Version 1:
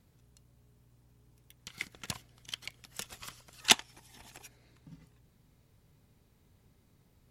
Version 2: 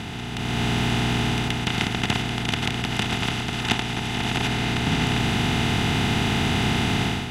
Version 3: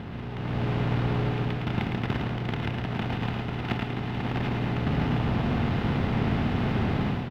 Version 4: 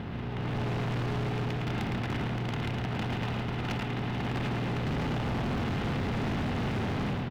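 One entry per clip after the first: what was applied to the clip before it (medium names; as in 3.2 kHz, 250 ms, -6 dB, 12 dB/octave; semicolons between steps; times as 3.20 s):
spectral levelling over time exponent 0.2; tone controls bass +14 dB, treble -15 dB; level rider gain up to 11.5 dB; trim -4.5 dB
square wave that keeps the level; distance through air 350 m; on a send: delay 110 ms -5 dB; on the sum: trim -9 dB
overload inside the chain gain 28.5 dB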